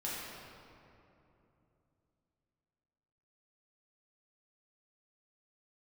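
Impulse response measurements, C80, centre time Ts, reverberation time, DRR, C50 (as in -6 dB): -1.0 dB, 0.152 s, 2.9 s, -8.0 dB, -2.5 dB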